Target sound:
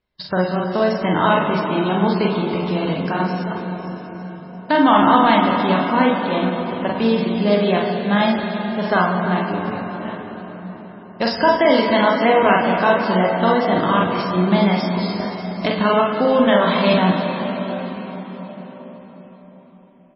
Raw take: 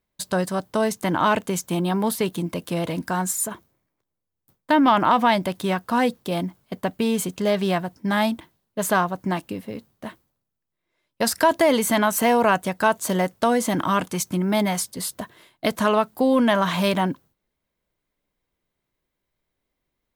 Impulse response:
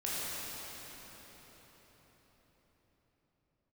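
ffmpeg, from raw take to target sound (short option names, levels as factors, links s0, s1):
-filter_complex "[0:a]asplit=2[s0][s1];[s1]adelay=44,volume=0.75[s2];[s0][s2]amix=inputs=2:normalize=0,asplit=2[s3][s4];[1:a]atrim=start_sample=2205,adelay=64[s5];[s4][s5]afir=irnorm=-1:irlink=0,volume=0.355[s6];[s3][s6]amix=inputs=2:normalize=0,volume=1.19" -ar 16000 -c:a libmp3lame -b:a 16k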